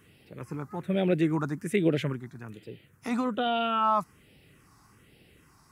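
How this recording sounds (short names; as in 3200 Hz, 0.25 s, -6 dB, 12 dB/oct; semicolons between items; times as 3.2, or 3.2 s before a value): phasing stages 4, 1.2 Hz, lowest notch 500–1100 Hz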